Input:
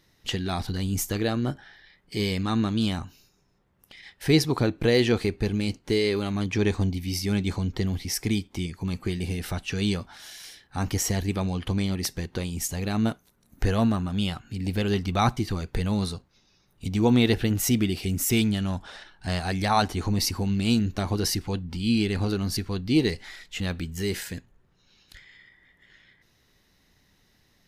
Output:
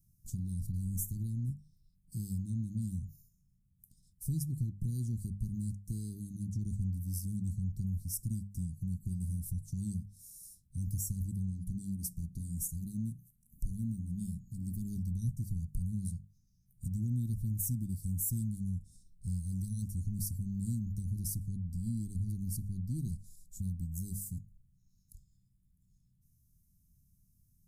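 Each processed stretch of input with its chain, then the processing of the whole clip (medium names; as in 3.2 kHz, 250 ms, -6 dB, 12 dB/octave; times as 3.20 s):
11.50–14.96 s: peaking EQ 97 Hz -8 dB 0.3 oct + hum notches 60/120/180/240/300/360/420/480 Hz
whole clip: inverse Chebyshev band-stop 610–2600 Hz, stop band 70 dB; hum notches 50/100/150/200 Hz; compression 2:1, threshold -35 dBFS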